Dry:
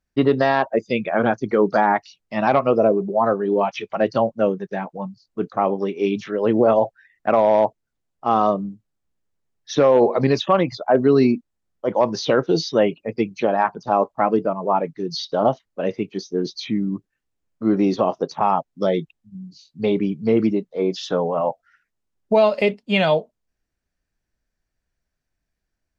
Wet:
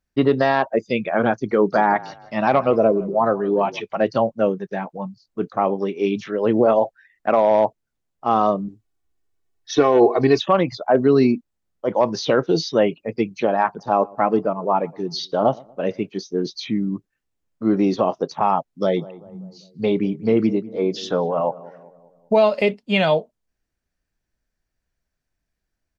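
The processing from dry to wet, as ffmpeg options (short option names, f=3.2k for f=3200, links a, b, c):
-filter_complex "[0:a]asplit=3[a][b][c];[a]afade=t=out:st=1.73:d=0.02[d];[b]asplit=4[e][f][g][h];[f]adelay=162,afreqshift=-34,volume=-19dB[i];[g]adelay=324,afreqshift=-68,volume=-28.4dB[j];[h]adelay=486,afreqshift=-102,volume=-37.7dB[k];[e][i][j][k]amix=inputs=4:normalize=0,afade=t=in:st=1.73:d=0.02,afade=t=out:st=3.79:d=0.02[l];[c]afade=t=in:st=3.79:d=0.02[m];[d][l][m]amix=inputs=3:normalize=0,asettb=1/sr,asplit=3[n][o][p];[n]atrim=end=6.654[q];[o]atrim=start=6.65:end=7.51,asetpts=PTS-STARTPTS,afade=t=in:d=0.004:c=qsin,afade=t=out:st=0.856:d=0.004:c=qsin,equalizer=f=120:w=1.7:g=-7[r];[p]atrim=start=7.506[s];[q][r]acrossfade=d=0.004:c1=hsin:c2=qsin[t];[t][s]acrossfade=d=0.004:c1=qsin:c2=hsin,asettb=1/sr,asplit=3[u][v][w];[u]atrim=end=8.684[x];[v]atrim=start=8.68:end=10.38,asetpts=PTS-STARTPTS,afade=t=in:d=0.004:c=qsin,afade=t=out:st=1.696:d=0.004:c=qsin,aecho=1:1:2.7:0.73,atrim=end_sample=74970[y];[w]atrim=start=10.376[z];[x][y]acrossfade=d=0.004:c1=hsin:c2=qsin[aa];[aa][z]acrossfade=d=0.004:c1=qsin:c2=hsin,asplit=3[ab][ac][ad];[ab]afade=t=out:st=13.78:d=0.02[ae];[ac]asplit=2[af][ag];[ag]adelay=118,lowpass=f=1.4k:p=1,volume=-23.5dB,asplit=2[ah][ai];[ai]adelay=118,lowpass=f=1.4k:p=1,volume=0.45,asplit=2[aj][ak];[ak]adelay=118,lowpass=f=1.4k:p=1,volume=0.45[al];[af][ah][aj][al]amix=inputs=4:normalize=0,afade=t=in:st=13.78:d=0.02,afade=t=out:st=16.06:d=0.02[am];[ad]afade=t=in:st=16.06:d=0.02[an];[ae][am][an]amix=inputs=3:normalize=0,asplit=3[ao][ap][aq];[ao]afade=t=out:st=18.96:d=0.02[ar];[ap]asplit=2[as][at];[at]adelay=196,lowpass=f=1.1k:p=1,volume=-18dB,asplit=2[au][av];[av]adelay=196,lowpass=f=1.1k:p=1,volume=0.55,asplit=2[aw][ax];[ax]adelay=196,lowpass=f=1.1k:p=1,volume=0.55,asplit=2[ay][az];[az]adelay=196,lowpass=f=1.1k:p=1,volume=0.55,asplit=2[ba][bb];[bb]adelay=196,lowpass=f=1.1k:p=1,volume=0.55[bc];[as][au][aw][ay][ba][bc]amix=inputs=6:normalize=0,afade=t=in:st=18.96:d=0.02,afade=t=out:st=22.42:d=0.02[bd];[aq]afade=t=in:st=22.42:d=0.02[be];[ar][bd][be]amix=inputs=3:normalize=0"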